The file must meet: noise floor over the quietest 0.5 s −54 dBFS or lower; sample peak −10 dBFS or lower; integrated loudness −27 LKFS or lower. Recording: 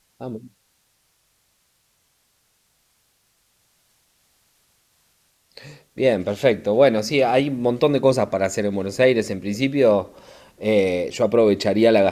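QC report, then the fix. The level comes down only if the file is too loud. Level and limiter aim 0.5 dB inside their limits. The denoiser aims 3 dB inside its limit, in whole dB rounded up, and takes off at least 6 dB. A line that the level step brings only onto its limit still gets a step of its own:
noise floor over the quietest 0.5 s −66 dBFS: in spec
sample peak −4.0 dBFS: out of spec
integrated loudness −19.5 LKFS: out of spec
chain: level −8 dB

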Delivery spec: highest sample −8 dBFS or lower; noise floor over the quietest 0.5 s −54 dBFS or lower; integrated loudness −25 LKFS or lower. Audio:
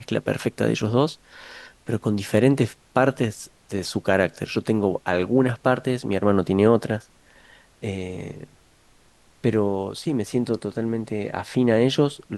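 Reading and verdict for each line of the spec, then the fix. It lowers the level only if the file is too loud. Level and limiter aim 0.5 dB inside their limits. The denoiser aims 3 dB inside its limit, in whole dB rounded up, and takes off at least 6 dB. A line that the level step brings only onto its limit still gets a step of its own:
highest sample −4.0 dBFS: out of spec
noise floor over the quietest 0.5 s −56 dBFS: in spec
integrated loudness −23.0 LKFS: out of spec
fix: level −2.5 dB
brickwall limiter −8.5 dBFS

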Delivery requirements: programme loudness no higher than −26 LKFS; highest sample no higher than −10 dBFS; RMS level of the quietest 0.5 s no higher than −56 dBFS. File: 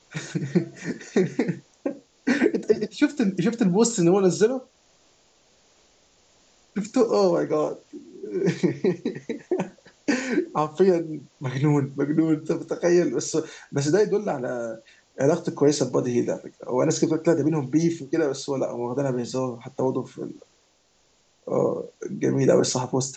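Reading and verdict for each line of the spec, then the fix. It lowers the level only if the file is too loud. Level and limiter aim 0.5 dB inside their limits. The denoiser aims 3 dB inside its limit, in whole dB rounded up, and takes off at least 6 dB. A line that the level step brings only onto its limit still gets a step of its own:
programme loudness −24.0 LKFS: out of spec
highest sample −6.0 dBFS: out of spec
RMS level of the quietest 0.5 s −63 dBFS: in spec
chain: level −2.5 dB
brickwall limiter −10.5 dBFS

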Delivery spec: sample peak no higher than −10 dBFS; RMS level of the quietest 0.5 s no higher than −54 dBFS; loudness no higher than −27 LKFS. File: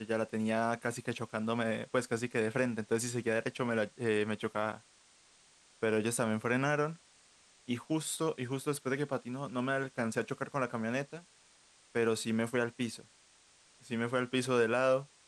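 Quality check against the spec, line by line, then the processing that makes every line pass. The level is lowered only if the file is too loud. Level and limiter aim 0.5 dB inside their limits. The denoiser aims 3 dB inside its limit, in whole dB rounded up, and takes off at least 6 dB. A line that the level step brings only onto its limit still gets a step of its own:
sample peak −16.0 dBFS: in spec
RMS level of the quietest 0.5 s −64 dBFS: in spec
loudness −34.0 LKFS: in spec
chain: no processing needed

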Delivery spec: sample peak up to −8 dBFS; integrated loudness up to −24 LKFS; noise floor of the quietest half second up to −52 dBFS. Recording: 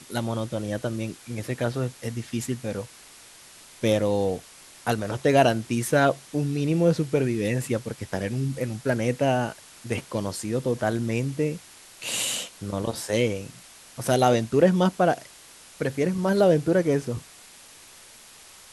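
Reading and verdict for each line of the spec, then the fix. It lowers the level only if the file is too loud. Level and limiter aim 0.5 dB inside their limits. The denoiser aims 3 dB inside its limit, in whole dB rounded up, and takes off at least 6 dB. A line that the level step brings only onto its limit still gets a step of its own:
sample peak −6.0 dBFS: out of spec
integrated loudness −25.5 LKFS: in spec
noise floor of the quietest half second −49 dBFS: out of spec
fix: broadband denoise 6 dB, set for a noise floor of −49 dBFS
brickwall limiter −8.5 dBFS

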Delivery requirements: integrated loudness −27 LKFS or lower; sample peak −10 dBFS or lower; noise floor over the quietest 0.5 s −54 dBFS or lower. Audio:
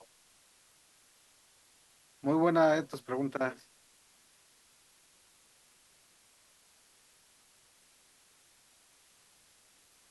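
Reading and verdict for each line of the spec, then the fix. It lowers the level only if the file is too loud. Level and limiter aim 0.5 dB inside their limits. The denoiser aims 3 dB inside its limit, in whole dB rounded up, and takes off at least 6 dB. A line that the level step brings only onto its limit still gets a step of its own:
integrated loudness −30.5 LKFS: in spec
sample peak −15.0 dBFS: in spec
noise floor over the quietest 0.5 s −65 dBFS: in spec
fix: no processing needed

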